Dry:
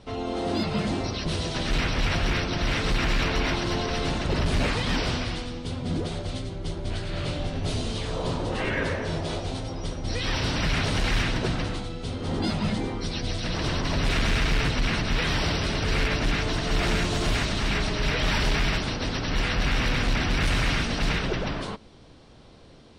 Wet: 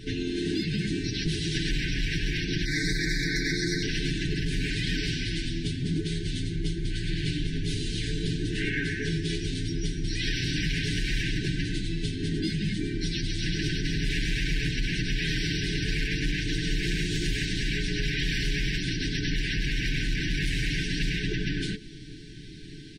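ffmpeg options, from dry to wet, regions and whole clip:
-filter_complex "[0:a]asettb=1/sr,asplit=3[s0][s1][s2];[s0]atrim=end=2.654[s3];[s1]atrim=start=2.65:end=3.83,asetpts=PTS-STARTPTS,afade=t=in:d=0.004:c=qsin,afade=t=out:st=1.176:d=0.004:c=qsin,asuperstop=centerf=2900:order=8:qfactor=1.9,lowshelf=f=230:g=-7.5,aecho=1:1:6.5:0.66,atrim=end_sample=52038[s4];[s2]atrim=start=3.826[s5];[s3][s4]acrossfade=d=0.004:c1=hsin:c2=qsin[s6];[s6][s5]acrossfade=d=0.004:c1=qsin:c2=hsin,afftfilt=real='re*(1-between(b*sr/4096,440,1500))':imag='im*(1-between(b*sr/4096,440,1500))':win_size=4096:overlap=0.75,acompressor=threshold=0.02:ratio=6,aecho=1:1:6.5:0.65,volume=2.24"

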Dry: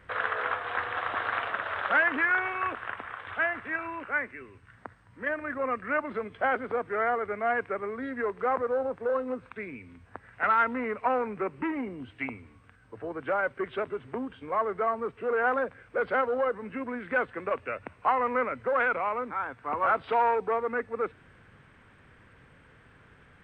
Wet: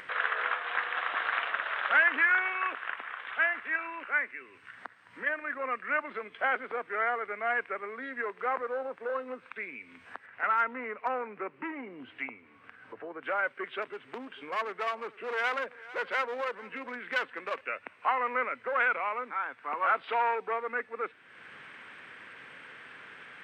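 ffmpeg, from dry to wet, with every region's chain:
-filter_complex "[0:a]asettb=1/sr,asplit=3[s0][s1][s2];[s0]atrim=end=10.264[s3];[s1]atrim=start=10.26:end=13.23,asetpts=PTS-STARTPTS,afade=t=in:d=0.004:c=qsin,afade=t=out:st=2.966:d=0.004:c=qsin,lowpass=f=1500:p=1,asoftclip=type=hard:threshold=0.126[s4];[s2]atrim=start=13.226[s5];[s3][s4]acrossfade=d=0.004:c1=hsin:c2=qsin[s6];[s6][s5]acrossfade=d=0.004:c1=qsin:c2=hsin,asettb=1/sr,asplit=3[s7][s8][s9];[s7]atrim=end=13.824[s10];[s8]atrim=start=13.82:end=17.61,asetpts=PTS-STARTPTS,afade=t=in:d=0.004:c=qsin,afade=t=out:st=3.786:d=0.004:c=qsin,aeval=exprs='clip(val(0),-1,0.0335)':c=same,aecho=1:1:448:0.0891,atrim=end_sample=167139[s11];[s9]atrim=start=17.606[s12];[s10][s11]acrossfade=d=0.004:c1=hsin:c2=qsin[s13];[s13][s12]acrossfade=d=0.004:c1=qsin:c2=hsin,highpass=260,equalizer=f=2500:w=0.57:g=11,acompressor=mode=upward:threshold=0.0316:ratio=2.5,volume=0.422"

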